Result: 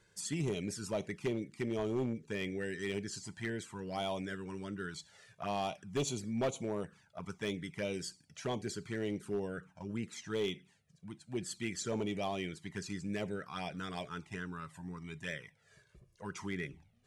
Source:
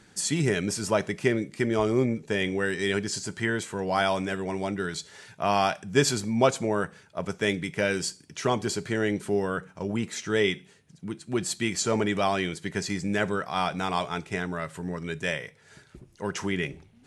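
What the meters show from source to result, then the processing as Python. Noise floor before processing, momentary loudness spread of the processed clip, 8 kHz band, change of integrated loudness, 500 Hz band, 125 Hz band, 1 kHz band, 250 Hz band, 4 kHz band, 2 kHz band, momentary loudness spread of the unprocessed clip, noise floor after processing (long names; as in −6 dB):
−58 dBFS, 9 LU, −12.0 dB, −11.5 dB, −11.5 dB, −10.0 dB, −14.0 dB, −10.0 dB, −11.5 dB, −13.5 dB, 9 LU, −70 dBFS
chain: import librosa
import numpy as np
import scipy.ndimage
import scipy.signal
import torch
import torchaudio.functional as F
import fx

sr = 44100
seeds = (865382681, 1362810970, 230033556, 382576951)

y = fx.env_flanger(x, sr, rest_ms=2.0, full_db=-21.0)
y = np.clip(10.0 ** (19.0 / 20.0) * y, -1.0, 1.0) / 10.0 ** (19.0 / 20.0)
y = y * 10.0 ** (-9.0 / 20.0)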